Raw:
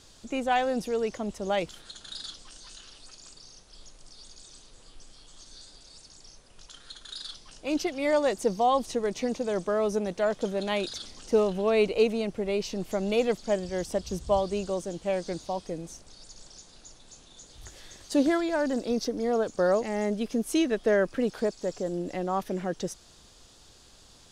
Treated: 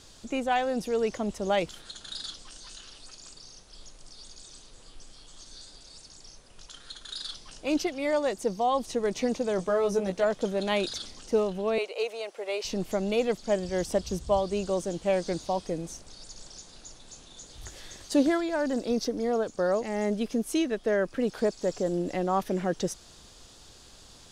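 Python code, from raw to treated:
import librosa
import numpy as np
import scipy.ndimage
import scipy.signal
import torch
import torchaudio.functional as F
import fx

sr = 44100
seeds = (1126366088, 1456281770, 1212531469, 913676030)

y = fx.rider(x, sr, range_db=3, speed_s=0.5)
y = fx.doubler(y, sr, ms=16.0, db=-4, at=(9.57, 10.24))
y = fx.highpass(y, sr, hz=490.0, slope=24, at=(11.78, 12.65))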